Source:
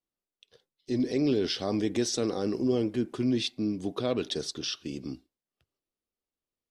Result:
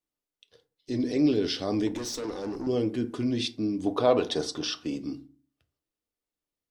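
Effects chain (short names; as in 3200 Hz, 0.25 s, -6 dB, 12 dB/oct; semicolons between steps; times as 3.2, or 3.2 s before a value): 1.87–2.67 tube stage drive 30 dB, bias 0.35; 3.86–4.96 bell 840 Hz +12.5 dB 1.4 oct; FDN reverb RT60 0.38 s, low-frequency decay 1.4×, high-frequency decay 0.55×, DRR 8.5 dB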